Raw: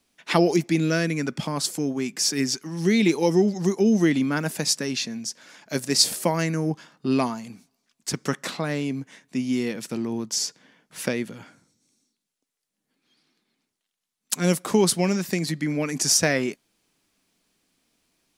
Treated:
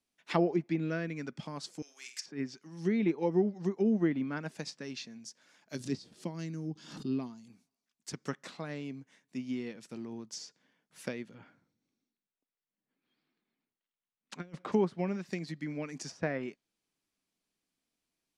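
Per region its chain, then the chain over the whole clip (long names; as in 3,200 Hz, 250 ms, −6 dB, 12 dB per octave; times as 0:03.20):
0:01.82–0:02.26: high-pass filter 1,500 Hz + high-shelf EQ 2,200 Hz +10.5 dB + flutter between parallel walls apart 8.3 metres, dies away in 0.37 s
0:05.75–0:07.48: flat-topped bell 1,100 Hz −10 dB 2.7 octaves + background raised ahead of every attack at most 60 dB per second
0:11.34–0:14.72: low-pass filter 2,800 Hz + compressor whose output falls as the input rises −27 dBFS, ratio −0.5
whole clip: treble cut that deepens with the level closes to 1,700 Hz, closed at −16.5 dBFS; expander for the loud parts 1.5 to 1, over −32 dBFS; level −7.5 dB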